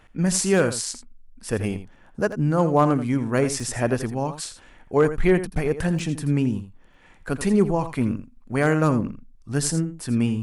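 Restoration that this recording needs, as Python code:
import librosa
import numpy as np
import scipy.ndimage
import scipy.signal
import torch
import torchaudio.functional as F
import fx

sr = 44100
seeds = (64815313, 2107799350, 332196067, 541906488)

y = fx.fix_declip(x, sr, threshold_db=-8.5)
y = fx.fix_interpolate(y, sr, at_s=(2.32, 3.6, 5.99, 6.94), length_ms=3.2)
y = fx.fix_echo_inverse(y, sr, delay_ms=83, level_db=-12.0)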